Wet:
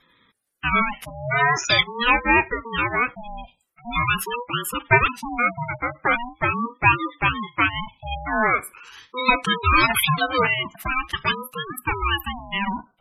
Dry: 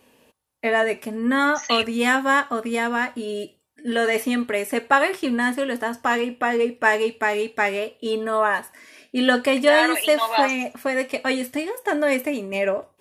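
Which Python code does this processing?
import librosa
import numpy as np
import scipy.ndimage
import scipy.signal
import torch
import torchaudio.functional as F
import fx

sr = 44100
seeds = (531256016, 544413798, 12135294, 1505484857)

y = fx.spec_gate(x, sr, threshold_db=-15, keep='strong')
y = fx.tilt_shelf(y, sr, db=-8.0, hz=820.0)
y = fx.ring_lfo(y, sr, carrier_hz=570.0, swing_pct=35, hz=0.43)
y = y * librosa.db_to_amplitude(2.0)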